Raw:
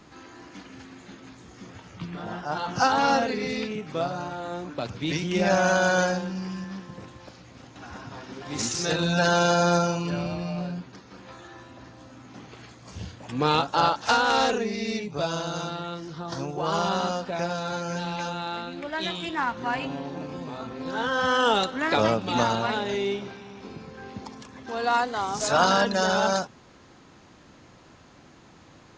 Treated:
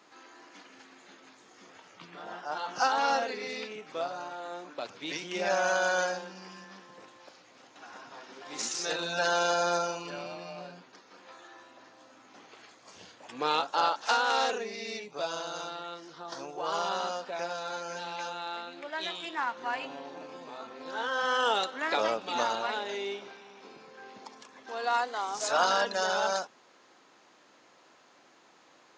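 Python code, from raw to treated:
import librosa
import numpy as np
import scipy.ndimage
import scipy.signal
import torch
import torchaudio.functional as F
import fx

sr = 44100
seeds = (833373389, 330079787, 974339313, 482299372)

y = scipy.signal.sosfilt(scipy.signal.butter(2, 440.0, 'highpass', fs=sr, output='sos'), x)
y = y * 10.0 ** (-4.5 / 20.0)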